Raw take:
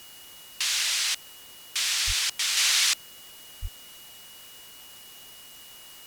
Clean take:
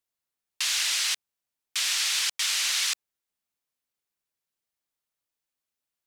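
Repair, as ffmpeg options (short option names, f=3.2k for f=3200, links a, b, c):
-filter_complex "[0:a]bandreject=f=2.9k:w=30,asplit=3[a][b][c];[a]afade=t=out:st=2.06:d=0.02[d];[b]highpass=f=140:w=0.5412,highpass=f=140:w=1.3066,afade=t=in:st=2.06:d=0.02,afade=t=out:st=2.18:d=0.02[e];[c]afade=t=in:st=2.18:d=0.02[f];[d][e][f]amix=inputs=3:normalize=0,asplit=3[g][h][i];[g]afade=t=out:st=3.61:d=0.02[j];[h]highpass=f=140:w=0.5412,highpass=f=140:w=1.3066,afade=t=in:st=3.61:d=0.02,afade=t=out:st=3.73:d=0.02[k];[i]afade=t=in:st=3.73:d=0.02[l];[j][k][l]amix=inputs=3:normalize=0,afwtdn=0.004,asetnsamples=n=441:p=0,asendcmd='2.57 volume volume -4dB',volume=0dB"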